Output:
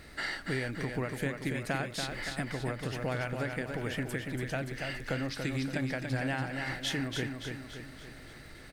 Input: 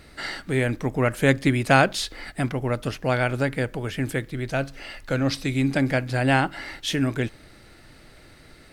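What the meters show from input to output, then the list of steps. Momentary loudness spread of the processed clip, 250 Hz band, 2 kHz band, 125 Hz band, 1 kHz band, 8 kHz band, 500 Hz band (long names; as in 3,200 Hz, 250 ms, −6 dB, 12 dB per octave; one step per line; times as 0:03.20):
9 LU, −10.5 dB, −9.0 dB, −10.0 dB, −13.0 dB, −7.5 dB, −11.5 dB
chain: parametric band 1,800 Hz +4.5 dB 0.37 octaves
downward compressor 6 to 1, threshold −29 dBFS, peak gain reduction 17 dB
surface crackle 270 per second −50 dBFS
repeating echo 285 ms, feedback 51%, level −5.5 dB
every ending faded ahead of time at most 130 dB per second
level −2.5 dB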